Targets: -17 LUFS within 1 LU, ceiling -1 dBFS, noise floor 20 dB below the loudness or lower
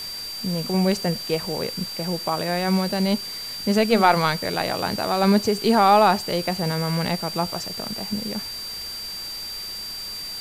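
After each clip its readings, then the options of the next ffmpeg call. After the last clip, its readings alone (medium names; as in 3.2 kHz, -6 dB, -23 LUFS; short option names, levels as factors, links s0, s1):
steady tone 4.7 kHz; tone level -31 dBFS; noise floor -33 dBFS; noise floor target -43 dBFS; loudness -23.0 LUFS; peak level -4.5 dBFS; loudness target -17.0 LUFS
-> -af "bandreject=f=4700:w=30"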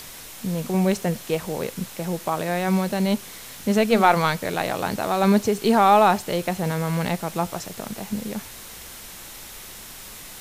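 steady tone not found; noise floor -40 dBFS; noise floor target -43 dBFS
-> -af "afftdn=nr=6:nf=-40"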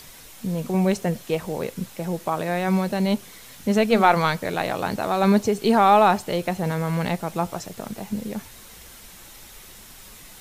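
noise floor -45 dBFS; loudness -22.5 LUFS; peak level -4.5 dBFS; loudness target -17.0 LUFS
-> -af "volume=1.88,alimiter=limit=0.891:level=0:latency=1"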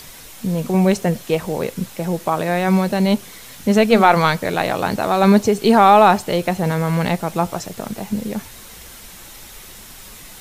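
loudness -17.5 LUFS; peak level -1.0 dBFS; noise floor -39 dBFS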